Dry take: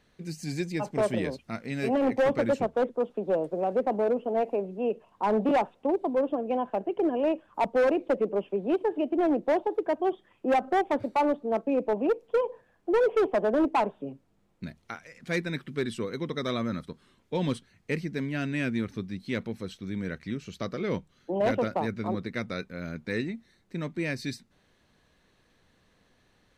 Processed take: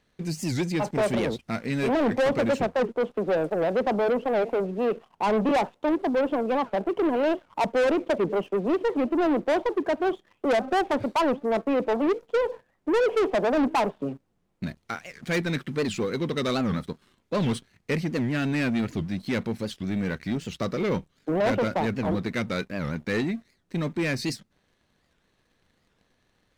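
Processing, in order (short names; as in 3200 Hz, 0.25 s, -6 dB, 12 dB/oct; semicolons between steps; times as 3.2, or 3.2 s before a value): sample leveller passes 2; record warp 78 rpm, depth 250 cents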